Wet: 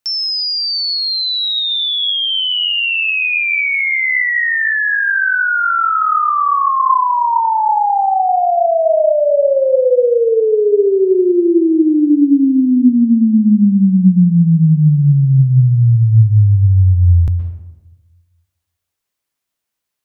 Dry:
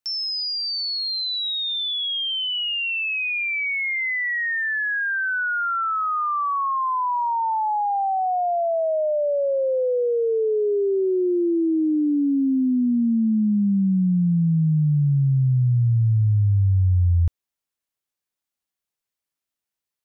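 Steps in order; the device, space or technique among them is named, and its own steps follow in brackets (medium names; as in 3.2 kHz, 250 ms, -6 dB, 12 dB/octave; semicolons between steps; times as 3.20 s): filtered reverb send (on a send: high-pass 210 Hz 6 dB/octave + low-pass 3.7 kHz + reverberation RT60 1.0 s, pre-delay 113 ms, DRR 5.5 dB); on the sum: trim +8 dB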